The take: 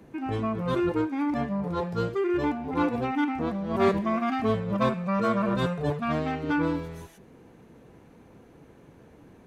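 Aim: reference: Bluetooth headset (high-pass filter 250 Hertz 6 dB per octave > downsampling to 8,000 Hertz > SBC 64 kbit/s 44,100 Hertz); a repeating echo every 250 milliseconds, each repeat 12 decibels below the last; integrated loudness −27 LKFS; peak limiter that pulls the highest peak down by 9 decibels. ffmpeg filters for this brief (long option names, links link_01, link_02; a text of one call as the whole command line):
ffmpeg -i in.wav -af "alimiter=limit=-20dB:level=0:latency=1,highpass=frequency=250:poles=1,aecho=1:1:250|500|750:0.251|0.0628|0.0157,aresample=8000,aresample=44100,volume=4dB" -ar 44100 -c:a sbc -b:a 64k out.sbc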